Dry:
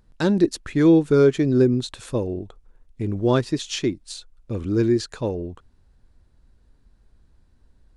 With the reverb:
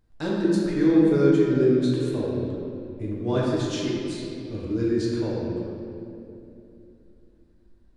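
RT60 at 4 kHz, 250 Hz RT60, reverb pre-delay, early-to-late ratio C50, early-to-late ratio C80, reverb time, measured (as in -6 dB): 1.8 s, 3.8 s, 7 ms, -2.0 dB, 0.0 dB, 2.8 s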